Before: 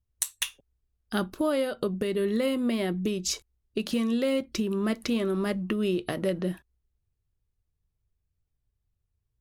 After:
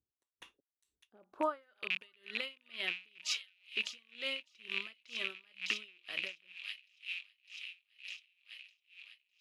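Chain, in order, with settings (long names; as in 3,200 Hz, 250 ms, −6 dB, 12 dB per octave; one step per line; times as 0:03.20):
loose part that buzzes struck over −33 dBFS, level −22 dBFS
band-pass filter sweep 340 Hz → 2,900 Hz, 0:00.97–0:01.89
delay with a high-pass on its return 605 ms, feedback 74%, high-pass 2,800 Hz, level −4.5 dB
tremolo with a sine in dB 2.1 Hz, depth 32 dB
level +5 dB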